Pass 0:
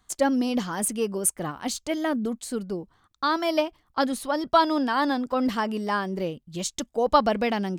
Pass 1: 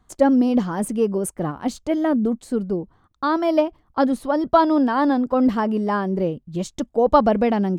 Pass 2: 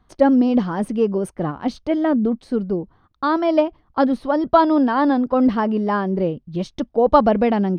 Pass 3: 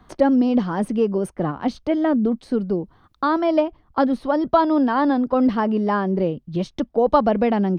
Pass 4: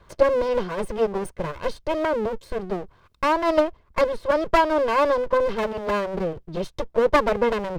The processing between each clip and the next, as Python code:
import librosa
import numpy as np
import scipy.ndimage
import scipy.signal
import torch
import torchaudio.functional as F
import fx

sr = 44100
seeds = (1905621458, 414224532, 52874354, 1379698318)

y1 = fx.tilt_shelf(x, sr, db=8.0, hz=1500.0)
y2 = scipy.signal.savgol_filter(y1, 15, 4, mode='constant')
y2 = y2 * librosa.db_to_amplitude(1.5)
y3 = fx.band_squash(y2, sr, depth_pct=40)
y3 = y3 * librosa.db_to_amplitude(-1.5)
y4 = fx.lower_of_two(y3, sr, delay_ms=1.9)